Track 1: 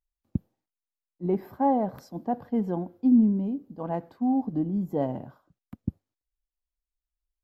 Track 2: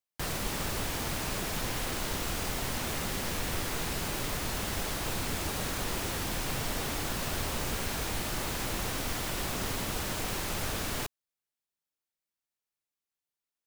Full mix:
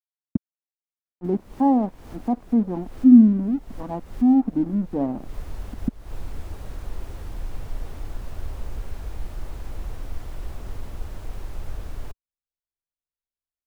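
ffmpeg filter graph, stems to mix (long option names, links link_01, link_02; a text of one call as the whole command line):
ffmpeg -i stem1.wav -i stem2.wav -filter_complex "[0:a]equalizer=frequency=125:width_type=o:width=1:gain=-7,equalizer=frequency=250:width_type=o:width=1:gain=10,equalizer=frequency=500:width_type=o:width=1:gain=-4,equalizer=frequency=1000:width_type=o:width=1:gain=7,aeval=exprs='sgn(val(0))*max(abs(val(0))-0.0126,0)':channel_layout=same,volume=-5.5dB,asplit=2[link_01][link_02];[1:a]asubboost=boost=6:cutoff=68,adelay=1050,volume=-11.5dB[link_03];[link_02]apad=whole_len=649146[link_04];[link_03][link_04]sidechaincompress=threshold=-44dB:ratio=4:attack=28:release=199[link_05];[link_01][link_05]amix=inputs=2:normalize=0,tiltshelf=frequency=1300:gain=7" out.wav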